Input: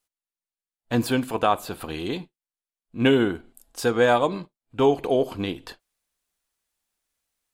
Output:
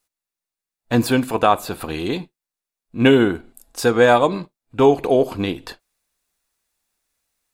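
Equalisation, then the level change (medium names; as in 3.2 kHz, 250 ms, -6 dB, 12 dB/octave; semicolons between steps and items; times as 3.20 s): band-stop 3.1 kHz, Q 13; +5.5 dB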